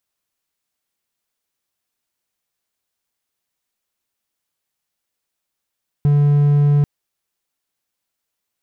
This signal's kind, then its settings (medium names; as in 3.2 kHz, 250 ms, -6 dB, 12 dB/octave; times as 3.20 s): tone triangle 145 Hz -8.5 dBFS 0.79 s